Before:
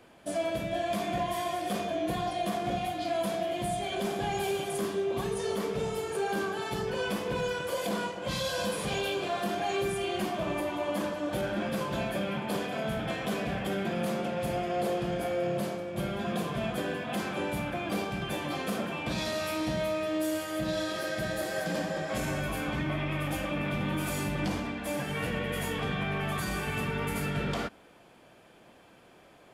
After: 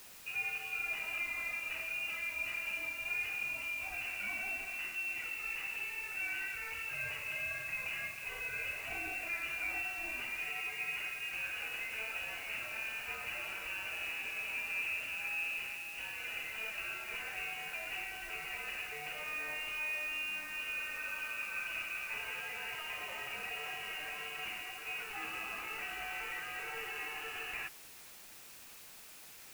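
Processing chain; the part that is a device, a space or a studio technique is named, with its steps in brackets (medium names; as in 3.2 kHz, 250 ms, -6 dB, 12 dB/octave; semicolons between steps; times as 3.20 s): scrambled radio voice (band-pass 390–2800 Hz; frequency inversion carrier 3.1 kHz; white noise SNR 13 dB); trim -6 dB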